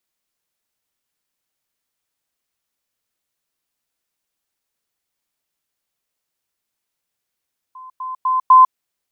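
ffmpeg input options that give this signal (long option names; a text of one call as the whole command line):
ffmpeg -f lavfi -i "aevalsrc='pow(10,(-34.5+10*floor(t/0.25))/20)*sin(2*PI*1030*t)*clip(min(mod(t,0.25),0.15-mod(t,0.25))/0.005,0,1)':duration=1:sample_rate=44100" out.wav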